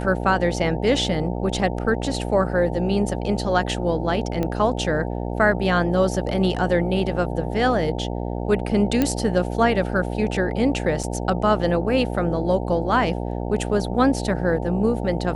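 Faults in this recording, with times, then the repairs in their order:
buzz 60 Hz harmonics 15 -27 dBFS
4.43 pop -13 dBFS
9.02 pop -7 dBFS
11.03–11.04 gap 5.3 ms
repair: de-click; de-hum 60 Hz, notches 15; interpolate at 11.03, 5.3 ms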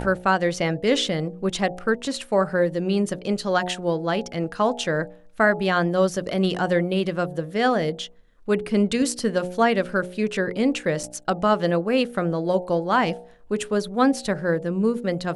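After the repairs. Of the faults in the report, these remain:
none

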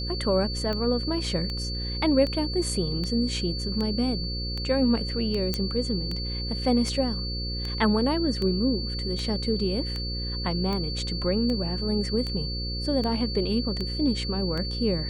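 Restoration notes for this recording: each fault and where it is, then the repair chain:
buzz 60 Hz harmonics 9 -32 dBFS
tick 78 rpm -19 dBFS
tone 4500 Hz -33 dBFS
5.54 pop -12 dBFS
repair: de-click; notch 4500 Hz, Q 30; de-hum 60 Hz, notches 9

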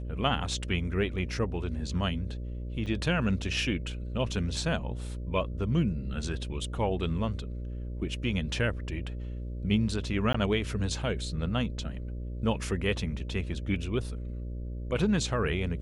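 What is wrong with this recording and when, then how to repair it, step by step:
buzz 60 Hz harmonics 10 -36 dBFS
2.86–2.87 gap 6.5 ms
10.33–10.34 gap 14 ms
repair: de-hum 60 Hz, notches 10; interpolate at 2.86, 6.5 ms; interpolate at 10.33, 14 ms

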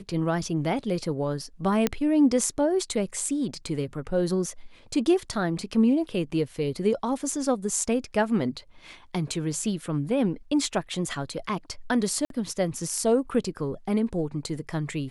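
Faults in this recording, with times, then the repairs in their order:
1.87 pop -8 dBFS
12.25–12.3 gap 52 ms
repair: de-click; interpolate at 12.25, 52 ms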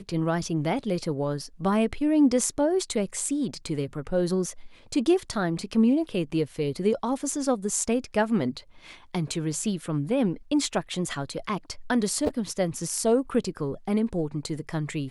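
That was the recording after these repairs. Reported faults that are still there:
none

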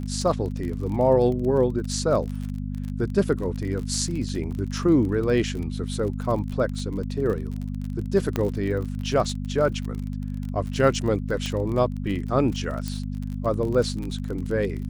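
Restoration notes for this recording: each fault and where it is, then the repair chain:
crackle 35/s -30 dBFS
hum 50 Hz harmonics 5 -30 dBFS
8.36 pop -11 dBFS
11.46 pop
12.88 pop -16 dBFS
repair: de-click; de-hum 50 Hz, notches 5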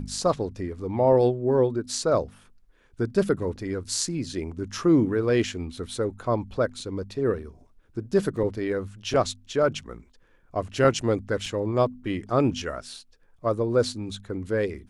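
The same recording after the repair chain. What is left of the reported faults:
8.36 pop
11.46 pop

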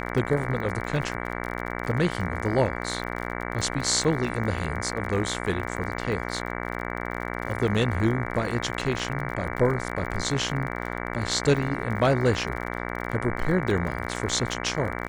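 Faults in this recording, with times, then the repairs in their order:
buzz 60 Hz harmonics 38 -32 dBFS
crackle 43/s -32 dBFS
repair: de-click; de-hum 60 Hz, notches 38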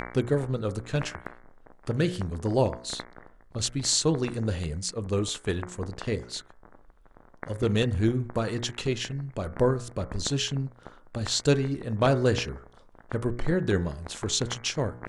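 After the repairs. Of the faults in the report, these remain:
none

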